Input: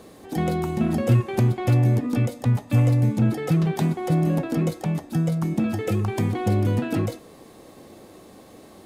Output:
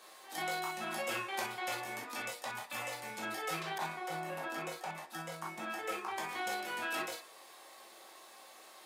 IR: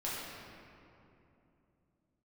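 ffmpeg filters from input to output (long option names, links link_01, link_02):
-filter_complex "[0:a]highpass=1100[link_01];[1:a]atrim=start_sample=2205,atrim=end_sample=3087[link_02];[link_01][link_02]afir=irnorm=-1:irlink=0,asettb=1/sr,asplit=3[link_03][link_04][link_05];[link_03]atrim=end=3.784[link_06];[link_04]atrim=start=3.78:end=6.29,asetpts=PTS-STARTPTS,afade=type=in:duration=0.004:curve=qsin,afade=type=out:start_time=2.506:duration=0.004:curve=qsin,adynamicequalizer=threshold=0.002:dfrequency=2400:dqfactor=0.7:tfrequency=2400:tqfactor=0.7:attack=5:release=100:ratio=0.375:range=3:mode=cutabove:tftype=highshelf[link_07];[link_05]atrim=start=6.286[link_08];[link_06][link_07]acrossfade=duration=0.004:curve1=hsin:curve2=qsin[link_09];[link_09][link_08]acrossfade=duration=0.004:curve1=qsin:curve2=hsin"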